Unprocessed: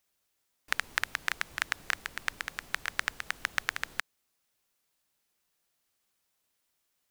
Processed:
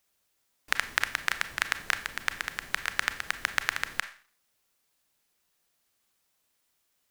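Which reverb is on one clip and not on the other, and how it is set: Schroeder reverb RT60 0.44 s, combs from 28 ms, DRR 11 dB; trim +3 dB

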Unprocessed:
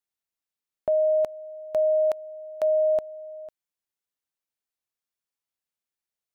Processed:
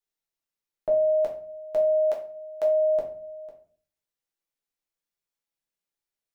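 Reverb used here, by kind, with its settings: simulated room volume 39 m³, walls mixed, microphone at 0.71 m; trim -4 dB

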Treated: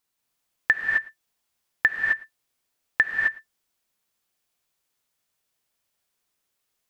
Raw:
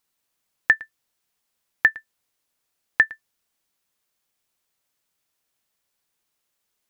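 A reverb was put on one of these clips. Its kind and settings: gated-style reverb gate 290 ms rising, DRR 1 dB; trim -3 dB

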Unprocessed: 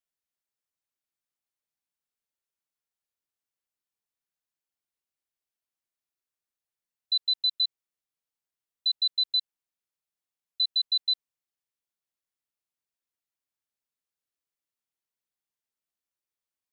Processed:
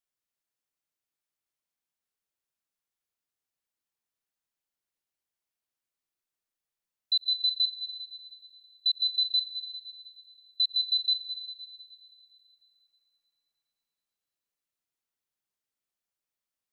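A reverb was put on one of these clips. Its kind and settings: algorithmic reverb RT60 4.9 s, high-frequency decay 0.65×, pre-delay 60 ms, DRR 6.5 dB

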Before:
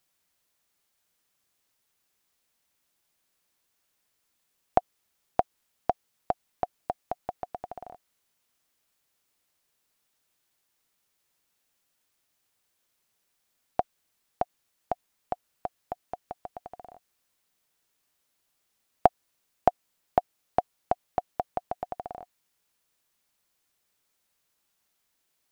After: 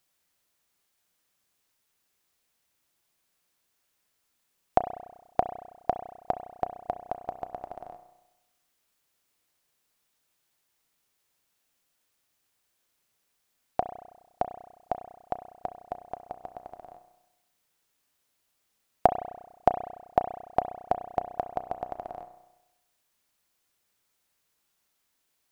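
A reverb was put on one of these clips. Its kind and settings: spring tank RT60 1 s, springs 32 ms, chirp 75 ms, DRR 9 dB

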